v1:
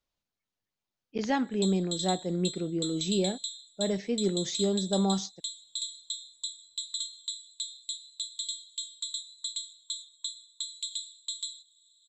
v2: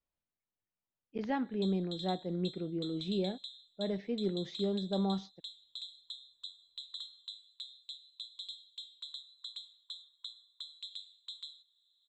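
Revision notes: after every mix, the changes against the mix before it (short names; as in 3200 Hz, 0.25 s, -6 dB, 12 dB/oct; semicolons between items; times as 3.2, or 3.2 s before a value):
speech -5.0 dB; master: add air absorption 290 m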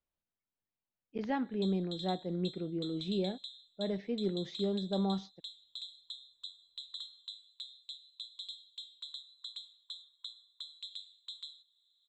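none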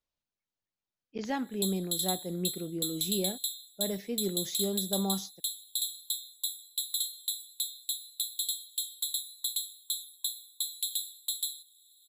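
background: remove brick-wall FIR low-pass 10000 Hz; master: remove air absorption 290 m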